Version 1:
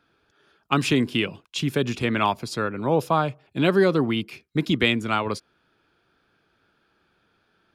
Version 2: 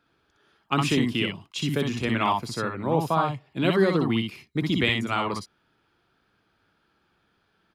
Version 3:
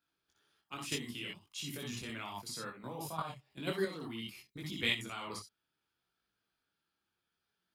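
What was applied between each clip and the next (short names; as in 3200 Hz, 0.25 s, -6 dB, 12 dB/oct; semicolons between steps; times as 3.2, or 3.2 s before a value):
tapped delay 61/62 ms -6.5/-4 dB; gain -3.5 dB
pre-emphasis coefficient 0.8; level quantiser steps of 11 dB; detuned doubles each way 22 cents; gain +5.5 dB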